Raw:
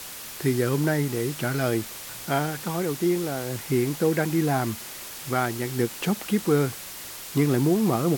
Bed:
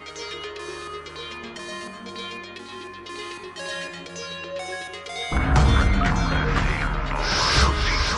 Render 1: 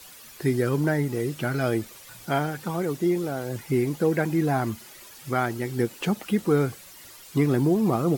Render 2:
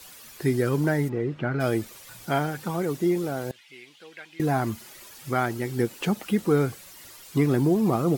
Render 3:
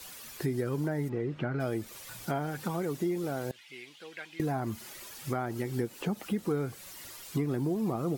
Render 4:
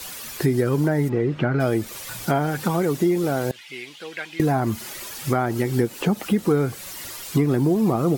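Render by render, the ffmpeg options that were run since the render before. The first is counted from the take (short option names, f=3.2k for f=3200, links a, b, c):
-af "afftdn=nr=11:nf=-39"
-filter_complex "[0:a]asplit=3[a][b][c];[a]afade=t=out:st=1.08:d=0.02[d];[b]lowpass=2.1k,afade=t=in:st=1.08:d=0.02,afade=t=out:st=1.59:d=0.02[e];[c]afade=t=in:st=1.59:d=0.02[f];[d][e][f]amix=inputs=3:normalize=0,asettb=1/sr,asplit=3[g][h][i];[g]atrim=end=3.514[j];[h]atrim=start=3.51:end=4.4,asetpts=PTS-STARTPTS,afade=t=in:d=0.004:c=qsin,afade=t=out:st=0.886:d=0.004:c=qsin,bandpass=f=3.1k:t=q:w=2.8[k];[i]atrim=start=4.396[l];[j][k]acrossfade=d=0.004:c1=hsin:c2=qsin[m];[m][l]acrossfade=d=0.004:c1=qsin:c2=hsin"
-filter_complex "[0:a]acrossover=split=1200[a][b];[b]alimiter=level_in=6dB:limit=-24dB:level=0:latency=1:release=151,volume=-6dB[c];[a][c]amix=inputs=2:normalize=0,acompressor=threshold=-30dB:ratio=3"
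-af "volume=11dB"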